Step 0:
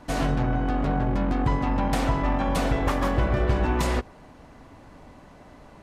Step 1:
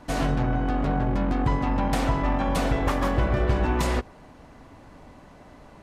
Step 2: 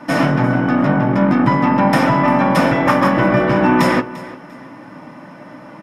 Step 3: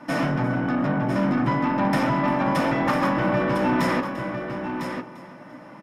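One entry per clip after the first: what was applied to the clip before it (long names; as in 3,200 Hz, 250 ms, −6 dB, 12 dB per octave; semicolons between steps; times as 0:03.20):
no processing that can be heard
repeating echo 346 ms, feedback 28%, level −18 dB; convolution reverb RT60 0.15 s, pre-delay 3 ms, DRR 4 dB; level +5 dB
soft clipping −8 dBFS, distortion −18 dB; single-tap delay 1,003 ms −7.5 dB; level −7 dB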